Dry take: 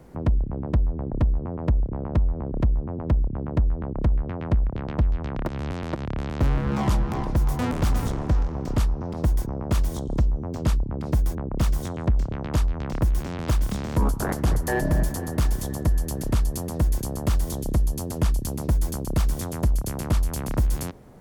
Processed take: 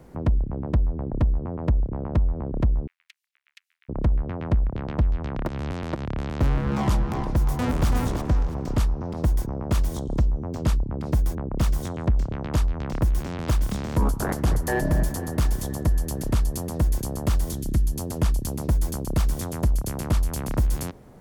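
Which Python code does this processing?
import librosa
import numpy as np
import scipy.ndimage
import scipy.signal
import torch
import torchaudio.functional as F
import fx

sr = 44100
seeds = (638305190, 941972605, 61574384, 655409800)

y = fx.steep_highpass(x, sr, hz=2200.0, slope=36, at=(2.87, 3.89))
y = fx.echo_throw(y, sr, start_s=7.34, length_s=0.54, ms=330, feedback_pct=25, wet_db=-7.0)
y = fx.band_shelf(y, sr, hz=710.0, db=-9.0, octaves=1.7, at=(17.52, 17.96))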